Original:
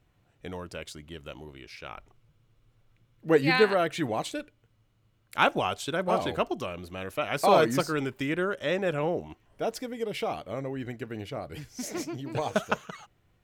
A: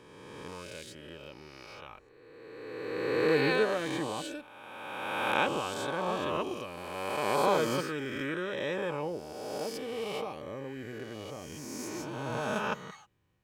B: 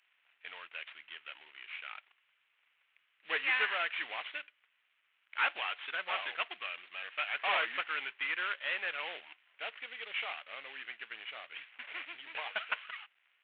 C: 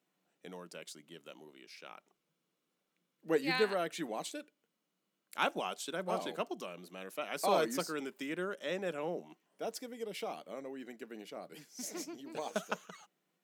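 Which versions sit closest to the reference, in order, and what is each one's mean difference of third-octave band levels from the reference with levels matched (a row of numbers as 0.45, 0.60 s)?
C, A, B; 3.5, 7.0, 14.0 dB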